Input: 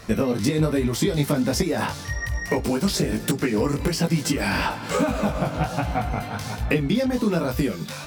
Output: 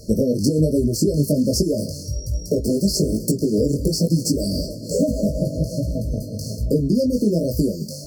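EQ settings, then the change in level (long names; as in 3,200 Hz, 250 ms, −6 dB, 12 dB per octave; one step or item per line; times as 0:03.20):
linear-phase brick-wall band-stop 660–4,200 Hz
+3.5 dB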